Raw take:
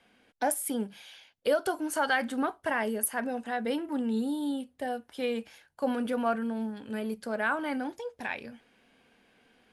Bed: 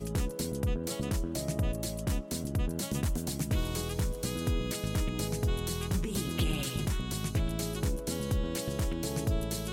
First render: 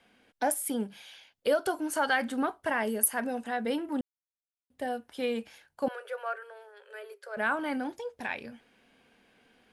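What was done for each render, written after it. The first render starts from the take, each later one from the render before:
0:02.87–0:03.48: high-shelf EQ 6,200 Hz +5.5 dB
0:04.01–0:04.70: silence
0:05.88–0:07.37: Chebyshev high-pass with heavy ripple 390 Hz, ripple 9 dB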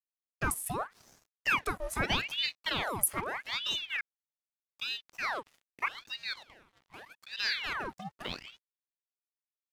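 dead-zone distortion −51 dBFS
ring modulator whose carrier an LFO sweeps 1,800 Hz, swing 85%, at 0.81 Hz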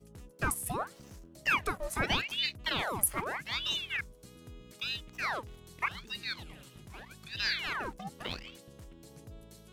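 mix in bed −19.5 dB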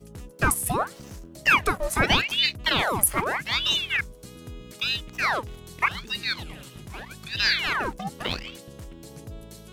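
level +9.5 dB
brickwall limiter −3 dBFS, peak gain reduction 3 dB

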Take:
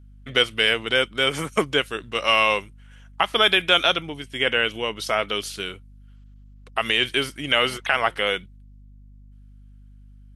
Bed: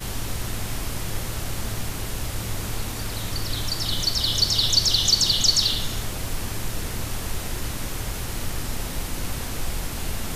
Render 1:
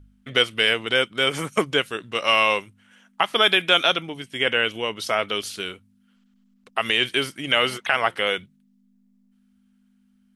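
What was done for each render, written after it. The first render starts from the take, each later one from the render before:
hum removal 50 Hz, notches 3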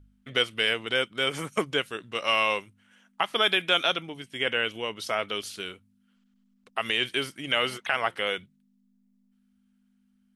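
level −5.5 dB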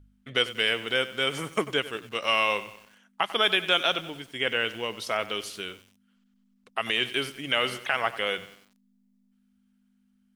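feedback echo at a low word length 94 ms, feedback 55%, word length 7 bits, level −15 dB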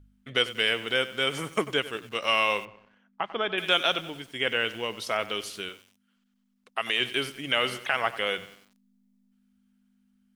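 0:02.65–0:03.58: head-to-tape spacing loss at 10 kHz 34 dB
0:05.69–0:07.00: low-shelf EQ 240 Hz −9.5 dB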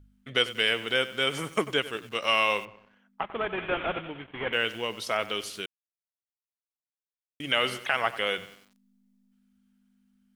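0:03.21–0:04.53: variable-slope delta modulation 16 kbit/s
0:05.66–0:07.40: silence

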